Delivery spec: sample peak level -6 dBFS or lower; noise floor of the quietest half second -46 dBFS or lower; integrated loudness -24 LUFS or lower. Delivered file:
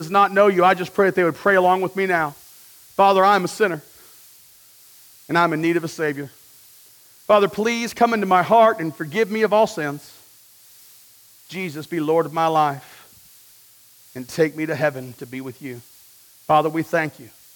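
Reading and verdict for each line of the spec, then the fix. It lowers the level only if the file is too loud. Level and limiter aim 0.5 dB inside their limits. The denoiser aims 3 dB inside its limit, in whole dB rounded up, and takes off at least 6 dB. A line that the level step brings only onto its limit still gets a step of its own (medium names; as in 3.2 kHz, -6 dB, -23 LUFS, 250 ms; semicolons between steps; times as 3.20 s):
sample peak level -4.0 dBFS: fail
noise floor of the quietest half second -50 dBFS: pass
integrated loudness -19.0 LUFS: fail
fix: trim -5.5 dB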